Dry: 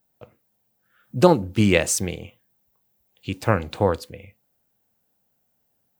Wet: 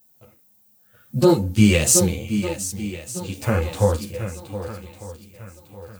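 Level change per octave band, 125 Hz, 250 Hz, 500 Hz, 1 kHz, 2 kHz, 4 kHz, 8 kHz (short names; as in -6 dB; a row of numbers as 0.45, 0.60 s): +4.5, +3.5, 0.0, -4.0, -0.5, +3.5, +8.0 dB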